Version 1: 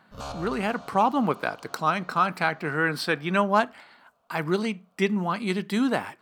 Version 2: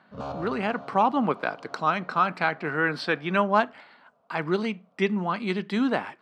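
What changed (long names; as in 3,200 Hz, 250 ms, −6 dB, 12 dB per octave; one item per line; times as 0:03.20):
background: add tilt shelving filter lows +8 dB, about 1,100 Hz
master: add band-pass filter 150–4,300 Hz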